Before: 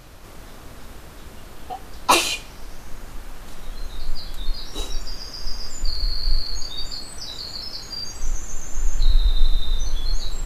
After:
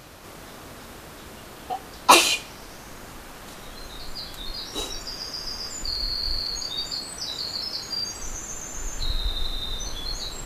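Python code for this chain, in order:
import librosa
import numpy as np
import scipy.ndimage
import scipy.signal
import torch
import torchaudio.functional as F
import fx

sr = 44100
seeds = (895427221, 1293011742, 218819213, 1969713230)

y = fx.highpass(x, sr, hz=150.0, slope=6)
y = y * 10.0 ** (2.5 / 20.0)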